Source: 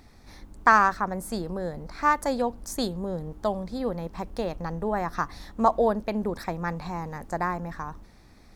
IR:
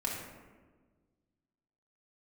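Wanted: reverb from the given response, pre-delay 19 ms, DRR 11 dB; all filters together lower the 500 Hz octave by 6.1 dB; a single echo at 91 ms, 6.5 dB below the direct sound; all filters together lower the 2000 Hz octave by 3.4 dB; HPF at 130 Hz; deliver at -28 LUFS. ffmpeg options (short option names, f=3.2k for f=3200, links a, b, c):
-filter_complex "[0:a]highpass=130,equalizer=f=500:t=o:g=-7.5,equalizer=f=2k:t=o:g=-4,aecho=1:1:91:0.473,asplit=2[a][b];[1:a]atrim=start_sample=2205,adelay=19[c];[b][c]afir=irnorm=-1:irlink=0,volume=-15.5dB[d];[a][d]amix=inputs=2:normalize=0,volume=1dB"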